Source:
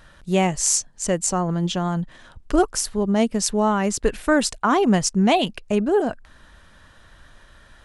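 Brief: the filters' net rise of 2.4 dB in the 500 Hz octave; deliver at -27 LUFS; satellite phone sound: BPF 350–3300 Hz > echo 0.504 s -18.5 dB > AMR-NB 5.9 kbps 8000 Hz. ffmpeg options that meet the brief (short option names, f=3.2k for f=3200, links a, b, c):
-af "highpass=350,lowpass=3.3k,equalizer=f=500:t=o:g=5,aecho=1:1:504:0.119,volume=-4dB" -ar 8000 -c:a libopencore_amrnb -b:a 5900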